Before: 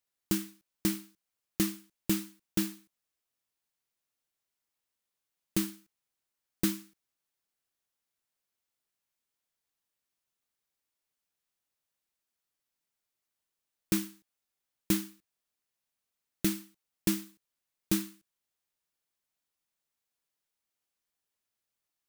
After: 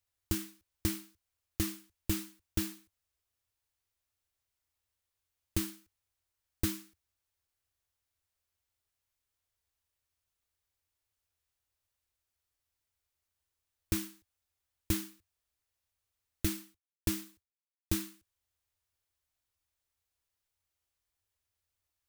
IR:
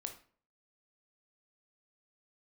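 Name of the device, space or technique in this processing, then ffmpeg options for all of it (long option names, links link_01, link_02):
car stereo with a boomy subwoofer: -filter_complex "[0:a]lowshelf=frequency=120:width_type=q:width=3:gain=10.5,alimiter=limit=-16dB:level=0:latency=1:release=121,asettb=1/sr,asplit=3[link_01][link_02][link_03];[link_01]atrim=end=16.574[link_04];[link_02]atrim=start=16.57:end=18.08,asetpts=PTS-STARTPTS,afade=type=in:duration=0.004:curve=qsin,afade=type=out:start_time=1.506:duration=0.004:curve=qsin,agate=range=-33dB:threshold=-57dB:ratio=3:detection=peak[link_05];[link_03]atrim=start=18.076[link_06];[link_04][link_05]acrossfade=duration=0.004:curve1=hsin:curve2=qsin[link_07];[link_07][link_06]acrossfade=duration=0.004:curve1=qsin:curve2=hsin"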